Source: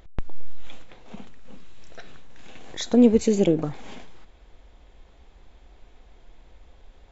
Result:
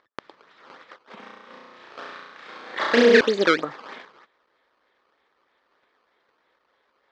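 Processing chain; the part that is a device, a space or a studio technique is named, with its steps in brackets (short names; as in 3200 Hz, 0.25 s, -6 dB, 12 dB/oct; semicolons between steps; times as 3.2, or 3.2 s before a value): gate -40 dBFS, range -11 dB; circuit-bent sampling toy (decimation with a swept rate 14×, swing 160% 3.2 Hz; speaker cabinet 530–4500 Hz, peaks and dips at 720 Hz -8 dB, 1200 Hz +5 dB, 1800 Hz +5 dB, 2700 Hz -5 dB); 1.19–3.21 flutter echo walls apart 5.8 m, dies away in 1.2 s; gain +6.5 dB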